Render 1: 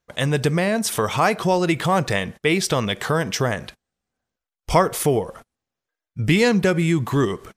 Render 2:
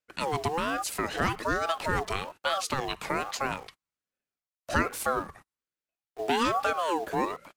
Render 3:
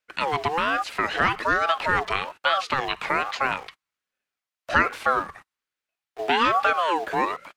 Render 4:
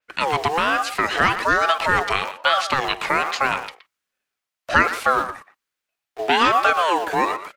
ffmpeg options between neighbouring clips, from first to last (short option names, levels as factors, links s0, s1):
-filter_complex "[0:a]acrossover=split=290|720|6200[s0][s1][s2][s3];[s0]acrusher=bits=6:mix=0:aa=0.000001[s4];[s4][s1][s2][s3]amix=inputs=4:normalize=0,aeval=exprs='val(0)*sin(2*PI*770*n/s+770*0.3/1.2*sin(2*PI*1.2*n/s))':c=same,volume=0.473"
-filter_complex "[0:a]acrossover=split=4200[s0][s1];[s1]acompressor=threshold=0.00316:ratio=4:attack=1:release=60[s2];[s0][s2]amix=inputs=2:normalize=0,equalizer=f=2000:w=0.34:g=10.5,volume=0.841"
-filter_complex "[0:a]asplit=2[s0][s1];[s1]adelay=120,highpass=300,lowpass=3400,asoftclip=type=hard:threshold=0.224,volume=0.282[s2];[s0][s2]amix=inputs=2:normalize=0,adynamicequalizer=threshold=0.01:dfrequency=4800:dqfactor=0.7:tfrequency=4800:tqfactor=0.7:attack=5:release=100:ratio=0.375:range=3.5:mode=boostabove:tftype=highshelf,volume=1.5"